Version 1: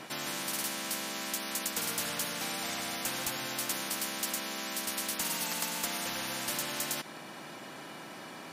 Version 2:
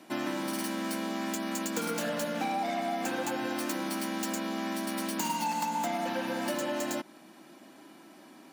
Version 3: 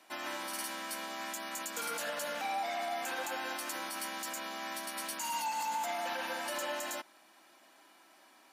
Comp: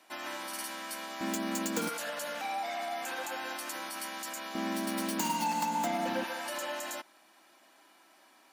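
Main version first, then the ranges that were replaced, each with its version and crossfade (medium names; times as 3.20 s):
3
1.21–1.89 s: from 2
4.55–6.24 s: from 2
not used: 1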